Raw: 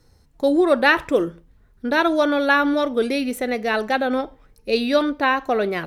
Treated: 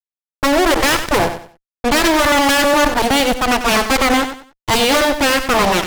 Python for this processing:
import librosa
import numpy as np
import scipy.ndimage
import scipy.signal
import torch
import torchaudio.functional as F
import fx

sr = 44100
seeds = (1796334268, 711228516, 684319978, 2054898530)

p1 = fx.cheby_harmonics(x, sr, harmonics=(4, 6, 7), levels_db=(-21, -10, -17), full_scale_db=-2.0)
p2 = fx.fuzz(p1, sr, gain_db=37.0, gate_db=-40.0)
p3 = p2 + fx.echo_feedback(p2, sr, ms=94, feedback_pct=27, wet_db=-10, dry=0)
p4 = fx.band_widen(p3, sr, depth_pct=40, at=(2.99, 3.72))
y = F.gain(torch.from_numpy(p4), 1.5).numpy()